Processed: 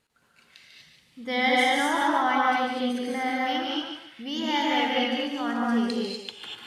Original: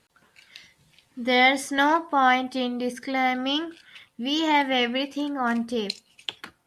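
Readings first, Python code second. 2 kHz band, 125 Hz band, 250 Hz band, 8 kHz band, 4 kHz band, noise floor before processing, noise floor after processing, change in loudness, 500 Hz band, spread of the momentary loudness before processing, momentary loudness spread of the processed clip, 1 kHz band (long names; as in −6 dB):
−2.0 dB, can't be measured, −1.0 dB, −1.5 dB, −1.5 dB, −67 dBFS, −63 dBFS, −1.5 dB, −1.5 dB, 13 LU, 12 LU, −1.5 dB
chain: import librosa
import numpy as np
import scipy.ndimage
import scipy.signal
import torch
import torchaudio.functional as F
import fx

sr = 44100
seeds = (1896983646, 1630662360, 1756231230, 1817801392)

p1 = x + fx.echo_thinned(x, sr, ms=146, feedback_pct=31, hz=320.0, wet_db=-6.5, dry=0)
p2 = fx.rev_gated(p1, sr, seeds[0], gate_ms=270, shape='rising', drr_db=-3.5)
y = p2 * librosa.db_to_amplitude(-7.5)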